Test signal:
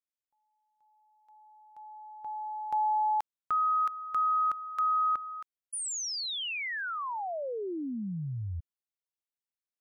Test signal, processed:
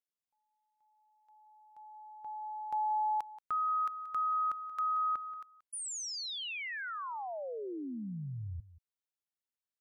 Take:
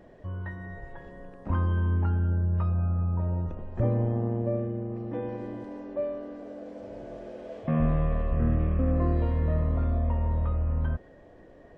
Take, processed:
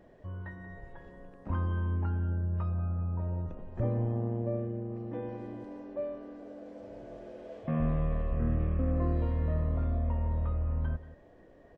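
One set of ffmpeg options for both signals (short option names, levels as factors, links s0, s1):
-af "aecho=1:1:180:0.15,volume=0.562"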